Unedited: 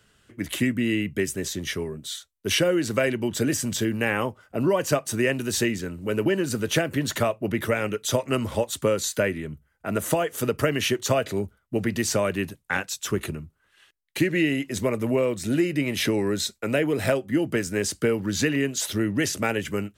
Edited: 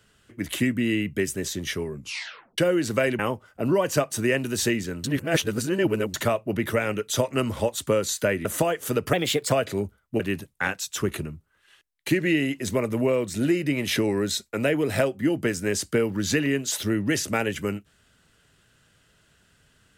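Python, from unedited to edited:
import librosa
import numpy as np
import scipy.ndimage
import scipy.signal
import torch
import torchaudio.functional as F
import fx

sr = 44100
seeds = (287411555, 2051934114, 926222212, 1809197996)

y = fx.edit(x, sr, fx.tape_stop(start_s=1.92, length_s=0.66),
    fx.cut(start_s=3.19, length_s=0.95),
    fx.reverse_span(start_s=5.99, length_s=1.1),
    fx.cut(start_s=9.4, length_s=0.57),
    fx.speed_span(start_s=10.65, length_s=0.46, speed=1.19),
    fx.cut(start_s=11.79, length_s=0.5), tone=tone)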